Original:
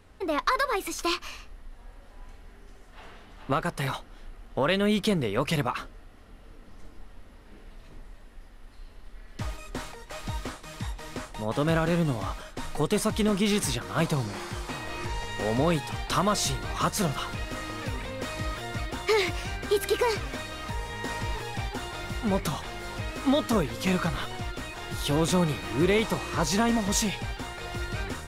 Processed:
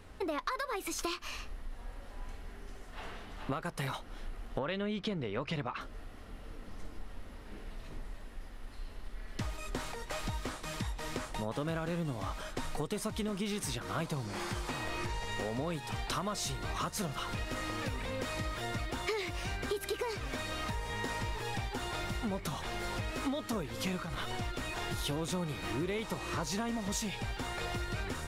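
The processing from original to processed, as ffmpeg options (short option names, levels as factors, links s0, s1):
-filter_complex "[0:a]asettb=1/sr,asplit=3[s0][s1][s2];[s0]atrim=end=4.594[s3];[s1]atrim=start=4.59:end=5.81,asetpts=PTS-STARTPTS,afade=t=in:d=0.004:c=qsin,afade=t=out:st=1.216:d=0.004:c=qsin,lowpass=4300[s4];[s2]atrim=start=5.806[s5];[s3][s4]acrossfade=d=0.004:c1=hsin:c2=qsin[s6];[s6][s5]acrossfade=d=0.004:c1=qsin:c2=hsin,asettb=1/sr,asplit=3[s7][s8][s9];[s7]atrim=end=24.024[s10];[s8]atrim=start=24.02:end=24.42,asetpts=PTS-STARTPTS,afade=t=in:d=0.004:c=qsin,afade=t=out:st=0.396:d=0.004:c=qsin,acompressor=threshold=0.0316:ratio=6:attack=3.2:release=140:knee=1:detection=peak[s11];[s9]atrim=start=24.416[s12];[s10][s11]acrossfade=d=0.004:c1=hsin:c2=qsin[s13];[s13][s12]acrossfade=d=0.004:c1=qsin:c2=hsin,acompressor=threshold=0.0158:ratio=6,volume=1.33"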